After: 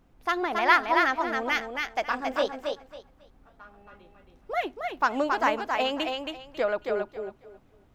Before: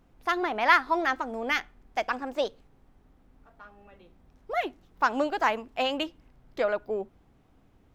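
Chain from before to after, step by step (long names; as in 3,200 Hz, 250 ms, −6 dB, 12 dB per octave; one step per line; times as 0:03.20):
0:02.05–0:02.46: double-tracking delay 27 ms −4 dB
on a send: feedback echo with a high-pass in the loop 273 ms, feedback 23%, high-pass 230 Hz, level −4 dB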